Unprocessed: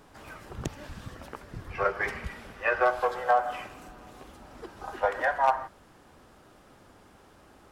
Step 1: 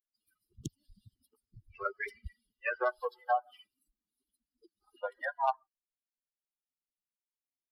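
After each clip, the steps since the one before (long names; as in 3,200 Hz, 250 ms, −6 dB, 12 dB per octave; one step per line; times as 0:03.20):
spectral dynamics exaggerated over time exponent 3
level −3 dB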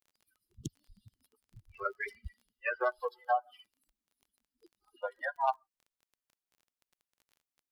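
surface crackle 21 per second −51 dBFS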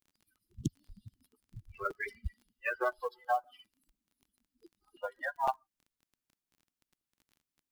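floating-point word with a short mantissa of 4 bits
low shelf with overshoot 370 Hz +6.5 dB, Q 1.5
regular buffer underruns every 0.51 s, samples 256, repeat, from 0:00.37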